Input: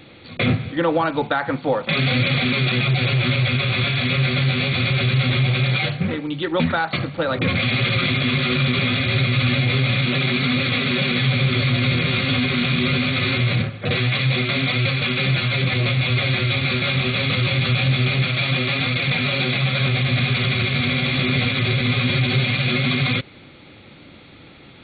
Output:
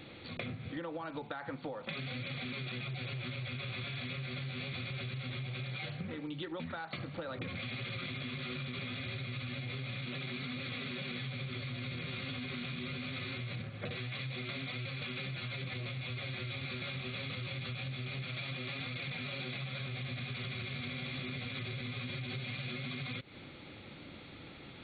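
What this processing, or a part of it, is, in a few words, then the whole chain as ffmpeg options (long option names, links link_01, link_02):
serial compression, peaks first: -af "acompressor=threshold=-26dB:ratio=6,acompressor=threshold=-33dB:ratio=3,volume=-6dB"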